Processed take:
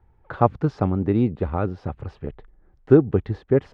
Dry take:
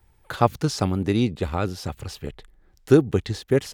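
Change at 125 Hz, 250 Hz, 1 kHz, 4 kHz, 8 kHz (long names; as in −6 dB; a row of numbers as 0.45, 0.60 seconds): +1.5 dB, +1.5 dB, +0.5 dB, below −15 dB, below −25 dB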